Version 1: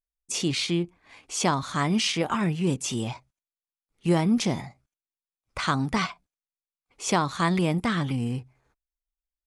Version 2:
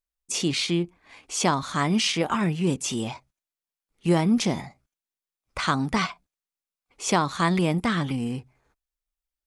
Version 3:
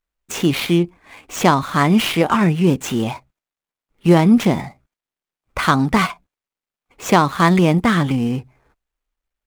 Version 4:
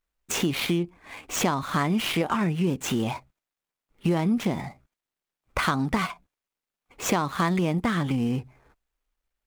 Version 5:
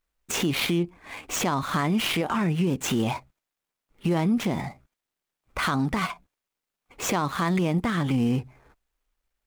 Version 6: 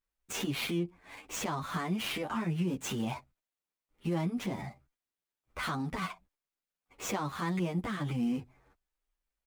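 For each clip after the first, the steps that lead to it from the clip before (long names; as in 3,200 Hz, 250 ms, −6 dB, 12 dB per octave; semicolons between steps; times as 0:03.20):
parametric band 120 Hz −6.5 dB 0.32 octaves; level +1.5 dB
running median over 9 samples; level +9 dB
downward compressor 4 to 1, threshold −23 dBFS, peak gain reduction 13.5 dB
brickwall limiter −19 dBFS, peak gain reduction 8.5 dB; level +2.5 dB
barber-pole flanger 9.3 ms +1.2 Hz; level −6 dB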